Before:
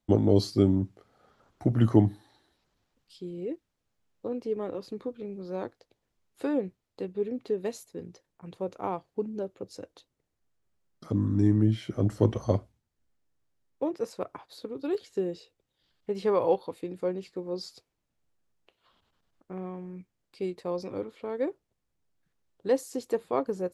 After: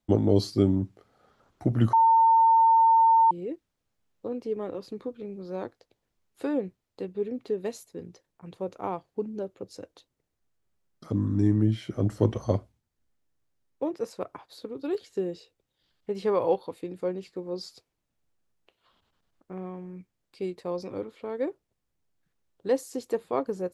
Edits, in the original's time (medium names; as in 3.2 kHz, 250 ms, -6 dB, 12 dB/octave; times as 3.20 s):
1.93–3.31 s: bleep 905 Hz -15.5 dBFS